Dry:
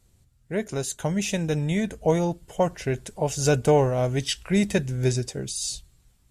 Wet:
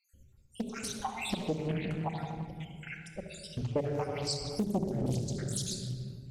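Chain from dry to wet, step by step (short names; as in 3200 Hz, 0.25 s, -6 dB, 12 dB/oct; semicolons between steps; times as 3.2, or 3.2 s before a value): random spectral dropouts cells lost 77%; shoebox room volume 3400 m³, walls mixed, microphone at 2.2 m; compressor 2.5:1, threshold -31 dBFS, peak gain reduction 9.5 dB; 1.67–3.76 LPF 2900 Hz -> 1500 Hz 6 dB/oct; Doppler distortion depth 0.74 ms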